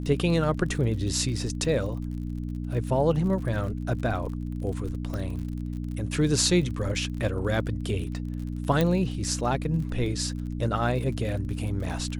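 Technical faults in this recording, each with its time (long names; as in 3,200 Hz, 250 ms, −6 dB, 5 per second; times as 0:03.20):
surface crackle 43 per second −35 dBFS
mains hum 60 Hz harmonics 5 −32 dBFS
0:05.14: click −21 dBFS
0:08.81: click −11 dBFS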